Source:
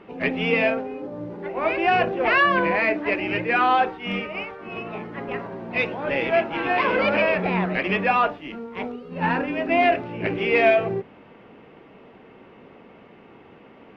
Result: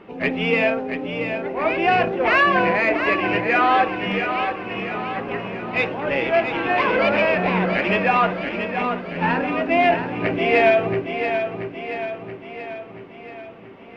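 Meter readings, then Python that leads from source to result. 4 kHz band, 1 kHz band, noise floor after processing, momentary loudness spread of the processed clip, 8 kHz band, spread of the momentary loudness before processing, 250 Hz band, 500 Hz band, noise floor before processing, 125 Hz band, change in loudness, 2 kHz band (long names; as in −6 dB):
+2.5 dB, +2.5 dB, −41 dBFS, 14 LU, can't be measured, 14 LU, +3.0 dB, +2.5 dB, −49 dBFS, +3.0 dB, +2.0 dB, +2.5 dB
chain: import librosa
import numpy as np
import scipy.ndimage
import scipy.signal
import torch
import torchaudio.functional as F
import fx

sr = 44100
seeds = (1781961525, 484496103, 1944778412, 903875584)

p1 = 10.0 ** (-15.5 / 20.0) * np.tanh(x / 10.0 ** (-15.5 / 20.0))
p2 = x + (p1 * librosa.db_to_amplitude(-11.5))
y = fx.echo_feedback(p2, sr, ms=680, feedback_pct=55, wet_db=-7.5)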